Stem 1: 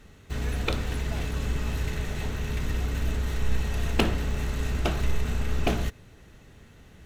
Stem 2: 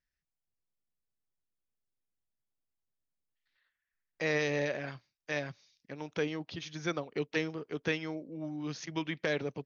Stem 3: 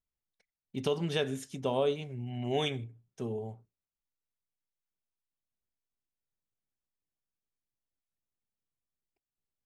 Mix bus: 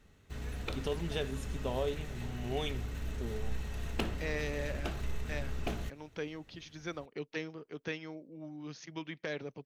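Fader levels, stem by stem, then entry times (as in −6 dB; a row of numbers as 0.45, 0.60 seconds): −11.0, −6.5, −5.5 decibels; 0.00, 0.00, 0.00 seconds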